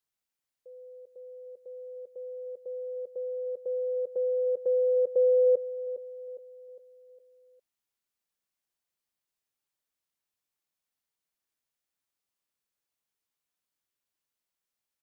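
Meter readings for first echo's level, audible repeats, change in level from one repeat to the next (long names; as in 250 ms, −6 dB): −13.0 dB, 4, −6.5 dB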